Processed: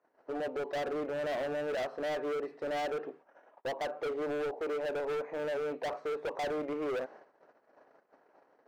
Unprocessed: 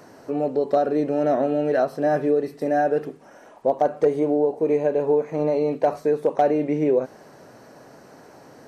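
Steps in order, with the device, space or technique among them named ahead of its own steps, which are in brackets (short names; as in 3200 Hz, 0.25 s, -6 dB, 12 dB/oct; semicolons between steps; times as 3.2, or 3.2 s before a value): walkie-talkie (BPF 430–2200 Hz; hard clip -27.5 dBFS, distortion -5 dB; gate -47 dBFS, range -24 dB); gain -4.5 dB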